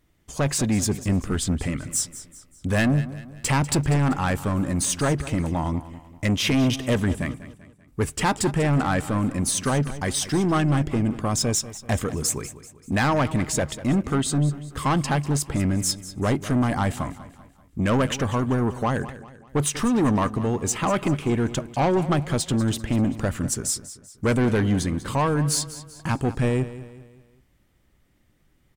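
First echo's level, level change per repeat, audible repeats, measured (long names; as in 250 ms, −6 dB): −15.0 dB, −7.0 dB, 3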